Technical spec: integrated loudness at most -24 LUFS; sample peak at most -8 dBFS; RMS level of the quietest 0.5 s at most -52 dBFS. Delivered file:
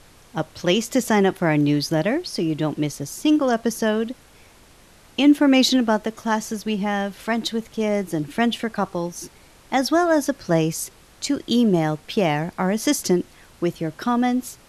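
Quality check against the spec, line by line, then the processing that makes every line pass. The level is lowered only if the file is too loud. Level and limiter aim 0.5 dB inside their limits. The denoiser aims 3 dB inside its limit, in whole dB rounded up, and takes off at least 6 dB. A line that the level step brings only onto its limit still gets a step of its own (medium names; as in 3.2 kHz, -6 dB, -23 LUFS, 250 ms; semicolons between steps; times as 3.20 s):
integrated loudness -22.0 LUFS: fail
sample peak -6.0 dBFS: fail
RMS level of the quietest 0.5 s -50 dBFS: fail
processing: trim -2.5 dB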